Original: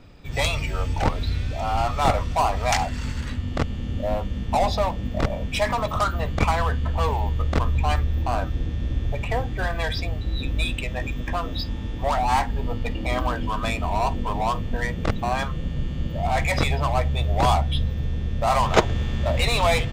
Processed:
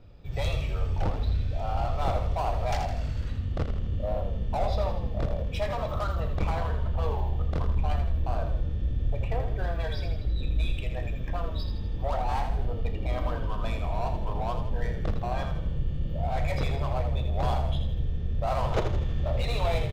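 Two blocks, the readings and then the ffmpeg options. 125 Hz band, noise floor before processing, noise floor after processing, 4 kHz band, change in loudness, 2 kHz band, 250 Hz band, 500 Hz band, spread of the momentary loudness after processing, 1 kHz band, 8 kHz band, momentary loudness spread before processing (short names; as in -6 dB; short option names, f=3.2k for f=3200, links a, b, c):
-3.5 dB, -31 dBFS, -33 dBFS, -11.5 dB, -6.0 dB, -12.5 dB, -8.0 dB, -6.0 dB, 4 LU, -9.5 dB, under -15 dB, 7 LU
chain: -filter_complex "[0:a]equalizer=f=250:t=o:w=1:g=-9,equalizer=f=1k:t=o:w=1:g=-7,equalizer=f=2k:t=o:w=1:g=-7,equalizer=f=8k:t=o:w=1:g=-7,asoftclip=type=tanh:threshold=-18.5dB,highshelf=f=2.6k:g=-9.5,asplit=2[a][b];[b]adelay=35,volume=-13dB[c];[a][c]amix=inputs=2:normalize=0,asplit=7[d][e][f][g][h][i][j];[e]adelay=81,afreqshift=-34,volume=-7dB[k];[f]adelay=162,afreqshift=-68,volume=-12.7dB[l];[g]adelay=243,afreqshift=-102,volume=-18.4dB[m];[h]adelay=324,afreqshift=-136,volume=-24dB[n];[i]adelay=405,afreqshift=-170,volume=-29.7dB[o];[j]adelay=486,afreqshift=-204,volume=-35.4dB[p];[d][k][l][m][n][o][p]amix=inputs=7:normalize=0,volume=-1dB"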